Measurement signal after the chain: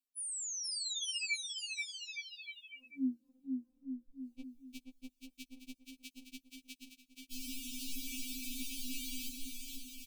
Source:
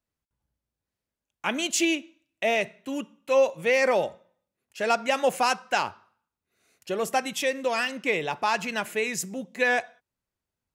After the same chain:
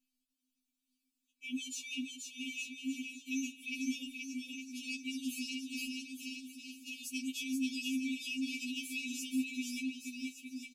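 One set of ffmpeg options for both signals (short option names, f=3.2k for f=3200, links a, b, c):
-filter_complex "[0:a]afftfilt=real='re*(1-between(b*sr/4096,360,2300))':imag='im*(1-between(b*sr/4096,360,2300))':win_size=4096:overlap=0.75,bandreject=f=71.9:t=h:w=4,bandreject=f=143.8:t=h:w=4,bandreject=f=215.7:t=h:w=4,acrossover=split=170|3000[a][b][c];[b]acompressor=threshold=-33dB:ratio=6[d];[a][d][c]amix=inputs=3:normalize=0,alimiter=level_in=1.5dB:limit=-24dB:level=0:latency=1:release=56,volume=-1.5dB,areverse,acompressor=threshold=-43dB:ratio=10,areverse,aecho=1:1:480|864|1171|1417|1614:0.631|0.398|0.251|0.158|0.1,afftfilt=real='re*3.46*eq(mod(b,12),0)':imag='im*3.46*eq(mod(b,12),0)':win_size=2048:overlap=0.75,volume=5.5dB"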